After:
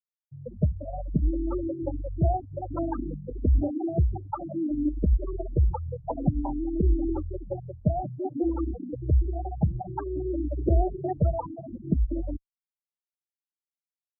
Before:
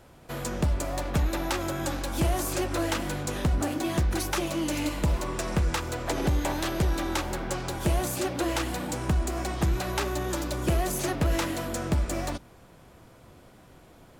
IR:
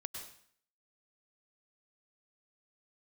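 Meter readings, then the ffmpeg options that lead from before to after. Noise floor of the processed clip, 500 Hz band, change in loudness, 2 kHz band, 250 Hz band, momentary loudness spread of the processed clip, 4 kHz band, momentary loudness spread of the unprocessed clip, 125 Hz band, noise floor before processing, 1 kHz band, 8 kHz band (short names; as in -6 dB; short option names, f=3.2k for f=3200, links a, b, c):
under -85 dBFS, -1.0 dB, 0.0 dB, under -25 dB, +1.0 dB, 9 LU, under -40 dB, 4 LU, +2.0 dB, -53 dBFS, -3.0 dB, under -40 dB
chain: -filter_complex "[0:a]afftfilt=real='re*gte(hypot(re,im),0.141)':imag='im*gte(hypot(re,im),0.141)':win_size=1024:overlap=0.75,asplit=2[a][b];[b]afreqshift=0.56[c];[a][c]amix=inputs=2:normalize=1,volume=5.5dB"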